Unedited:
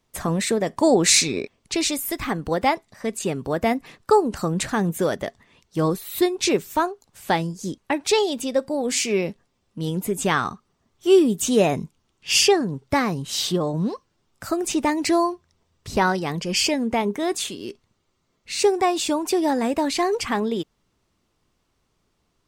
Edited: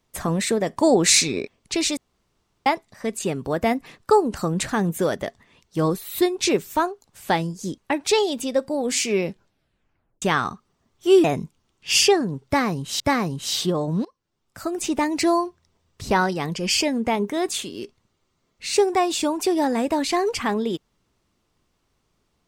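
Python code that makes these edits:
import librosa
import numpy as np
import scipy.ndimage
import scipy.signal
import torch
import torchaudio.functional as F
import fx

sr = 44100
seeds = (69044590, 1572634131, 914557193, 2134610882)

y = fx.edit(x, sr, fx.room_tone_fill(start_s=1.97, length_s=0.69),
    fx.tape_stop(start_s=9.28, length_s=0.94),
    fx.cut(start_s=11.24, length_s=0.4),
    fx.repeat(start_s=12.86, length_s=0.54, count=2),
    fx.fade_in_from(start_s=13.91, length_s=1.35, curve='qsin', floor_db=-22.5), tone=tone)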